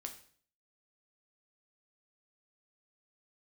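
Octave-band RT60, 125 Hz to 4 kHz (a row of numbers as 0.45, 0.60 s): 0.60, 0.60, 0.55, 0.50, 0.50, 0.50 s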